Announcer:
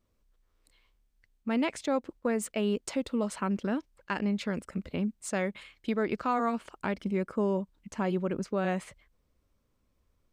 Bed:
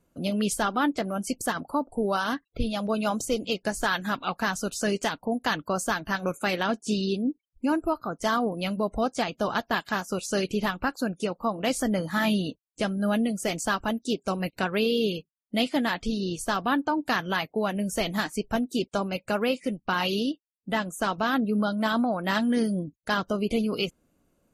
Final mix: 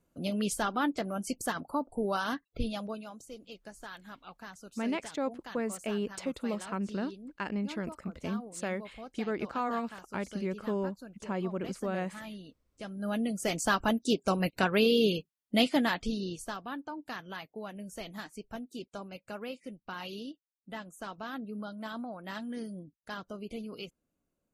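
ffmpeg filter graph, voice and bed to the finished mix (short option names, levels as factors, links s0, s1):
-filter_complex "[0:a]adelay=3300,volume=0.631[s0];[1:a]volume=5.31,afade=t=out:st=2.65:d=0.41:silence=0.188365,afade=t=in:st=12.75:d=1.08:silence=0.105925,afade=t=out:st=15.6:d=1.01:silence=0.188365[s1];[s0][s1]amix=inputs=2:normalize=0"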